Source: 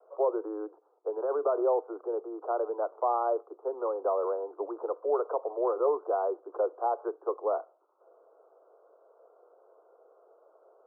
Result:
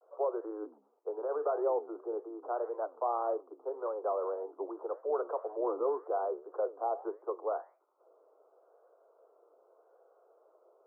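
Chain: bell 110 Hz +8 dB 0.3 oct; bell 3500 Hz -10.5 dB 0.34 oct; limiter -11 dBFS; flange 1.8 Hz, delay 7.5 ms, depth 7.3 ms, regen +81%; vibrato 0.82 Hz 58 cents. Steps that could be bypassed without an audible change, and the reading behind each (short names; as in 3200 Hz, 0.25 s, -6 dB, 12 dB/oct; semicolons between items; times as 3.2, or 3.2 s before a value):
bell 110 Hz: input band starts at 270 Hz; bell 3500 Hz: input band ends at 1400 Hz; limiter -11 dBFS: input peak -16.5 dBFS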